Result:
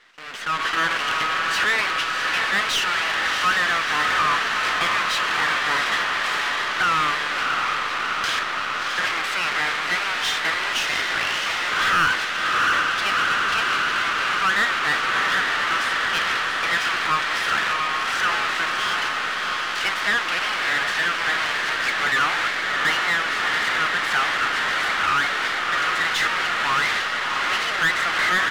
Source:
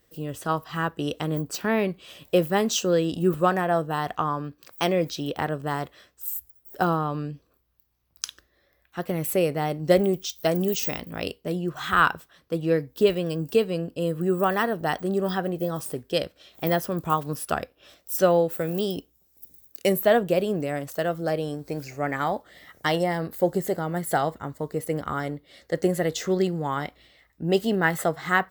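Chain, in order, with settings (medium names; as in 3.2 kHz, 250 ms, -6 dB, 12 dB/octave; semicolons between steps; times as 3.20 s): jump at every zero crossing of -22 dBFS; gate with hold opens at -22 dBFS; inverse Chebyshev high-pass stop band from 530 Hz, stop band 50 dB; tape spacing loss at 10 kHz 32 dB; on a send: echo that smears into a reverb 684 ms, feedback 72%, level -6 dB; on the sum: half-wave rectifier; overdrive pedal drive 21 dB, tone 2.5 kHz, clips at -20.5 dBFS; in parallel at +0.5 dB: peak limiter -31 dBFS, peak gain reduction 13 dB; on the sum: level rider gain up to 12 dB; trim -4 dB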